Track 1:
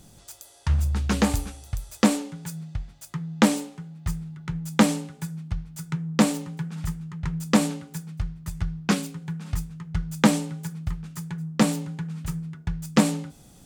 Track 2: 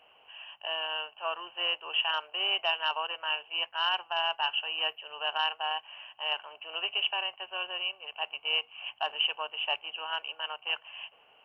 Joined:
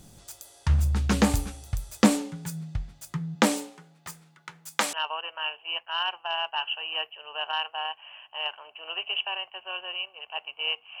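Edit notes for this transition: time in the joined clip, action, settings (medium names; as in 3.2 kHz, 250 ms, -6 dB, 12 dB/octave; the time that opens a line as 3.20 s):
track 1
3.34–4.93 s: high-pass 270 Hz -> 940 Hz
4.93 s: go over to track 2 from 2.79 s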